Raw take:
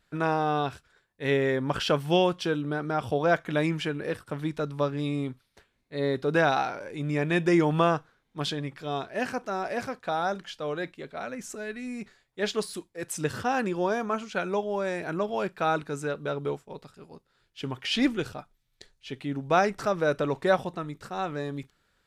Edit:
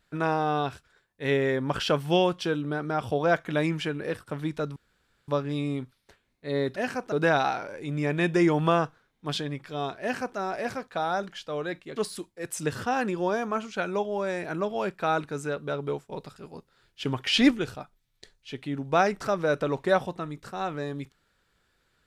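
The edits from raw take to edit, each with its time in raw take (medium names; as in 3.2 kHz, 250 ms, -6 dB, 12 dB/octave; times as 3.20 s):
4.76 s: insert room tone 0.52 s
9.14–9.50 s: copy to 6.24 s
11.08–12.54 s: delete
16.67–18.09 s: gain +4.5 dB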